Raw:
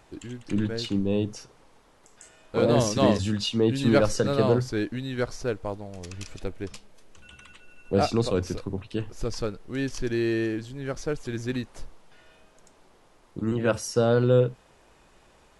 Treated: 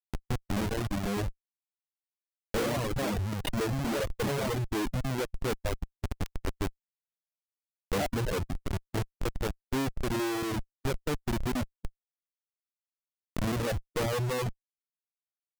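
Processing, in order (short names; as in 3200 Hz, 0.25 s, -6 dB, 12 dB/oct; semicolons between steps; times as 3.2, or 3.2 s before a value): treble ducked by the level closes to 1100 Hz, closed at -21.5 dBFS; Schmitt trigger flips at -31 dBFS; reverb removal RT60 1.3 s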